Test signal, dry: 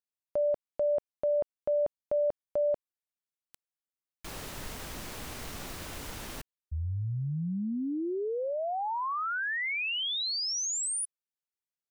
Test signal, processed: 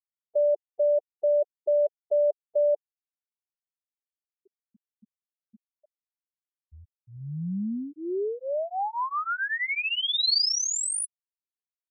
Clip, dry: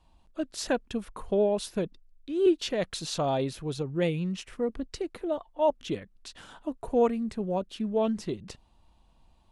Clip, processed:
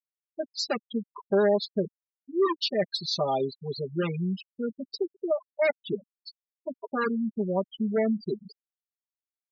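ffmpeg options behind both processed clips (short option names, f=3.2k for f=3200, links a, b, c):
-af "aeval=exprs='0.0841*(abs(mod(val(0)/0.0841+3,4)-2)-1)':c=same,highpass=f=190:p=1,equalizer=f=4.5k:t=o:w=0.5:g=7,aecho=1:1:5:0.96,afftfilt=real='re*gte(hypot(re,im),0.0631)':imag='im*gte(hypot(re,im),0.0631)':win_size=1024:overlap=0.75"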